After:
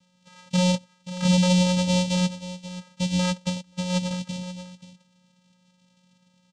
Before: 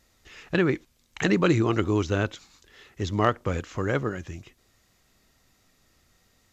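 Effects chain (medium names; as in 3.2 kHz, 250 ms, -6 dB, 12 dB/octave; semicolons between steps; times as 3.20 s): in parallel at -2 dB: peak limiter -15 dBFS, peak gain reduction 7.5 dB; on the sum: saturation -14.5 dBFS, distortion -14 dB; careless resampling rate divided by 8×, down filtered, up zero stuff; on a send: delay 532 ms -13.5 dB; on the sum: vocoder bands 4, square 181 Hz; 3.47–4.11 s: upward expansion 2.5:1, over -30 dBFS; trim -4 dB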